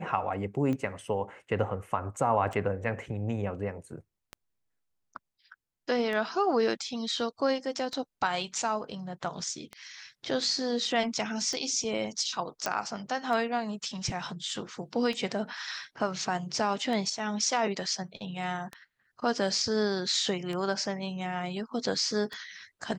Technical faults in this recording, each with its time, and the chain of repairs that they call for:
scratch tick 33 1/3 rpm −22 dBFS
0:12.66: click −14 dBFS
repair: click removal

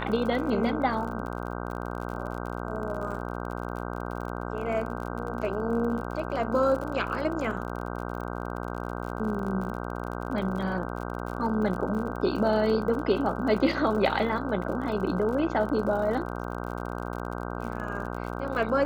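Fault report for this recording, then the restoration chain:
mains buzz 60 Hz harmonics 26 −34 dBFS
surface crackle 47 per second −35 dBFS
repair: click removal
hum removal 60 Hz, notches 26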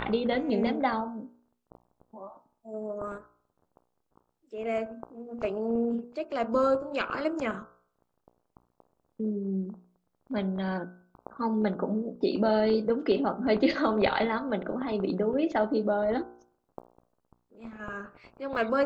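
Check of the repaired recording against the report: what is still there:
none of them is left

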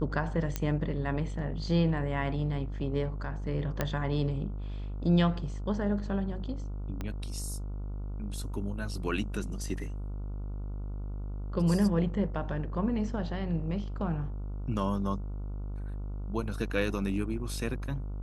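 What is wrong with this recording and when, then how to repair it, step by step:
mains buzz 50 Hz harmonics 29 −36 dBFS
0:00.56: click −15 dBFS
0:03.81: click −14 dBFS
0:07.01: click −22 dBFS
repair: click removal
hum removal 50 Hz, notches 29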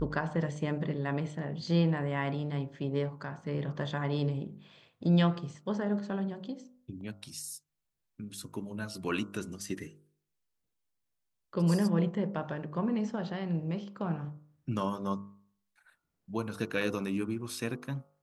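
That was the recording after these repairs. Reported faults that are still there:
0:07.01: click

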